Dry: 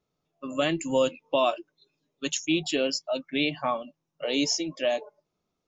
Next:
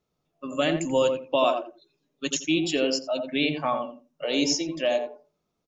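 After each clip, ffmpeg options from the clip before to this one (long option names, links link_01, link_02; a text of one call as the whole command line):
ffmpeg -i in.wav -filter_complex "[0:a]asplit=2[link_01][link_02];[link_02]adelay=86,lowpass=frequency=890:poles=1,volume=-3.5dB,asplit=2[link_03][link_04];[link_04]adelay=86,lowpass=frequency=890:poles=1,volume=0.23,asplit=2[link_05][link_06];[link_06]adelay=86,lowpass=frequency=890:poles=1,volume=0.23[link_07];[link_01][link_03][link_05][link_07]amix=inputs=4:normalize=0,volume=1dB" out.wav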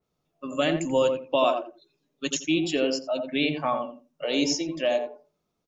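ffmpeg -i in.wav -af "adynamicequalizer=threshold=0.00891:dfrequency=2800:dqfactor=0.7:tfrequency=2800:tqfactor=0.7:attack=5:release=100:ratio=0.375:range=2.5:mode=cutabove:tftype=highshelf" out.wav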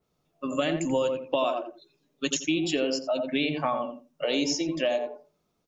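ffmpeg -i in.wav -af "acompressor=threshold=-27dB:ratio=4,volume=3.5dB" out.wav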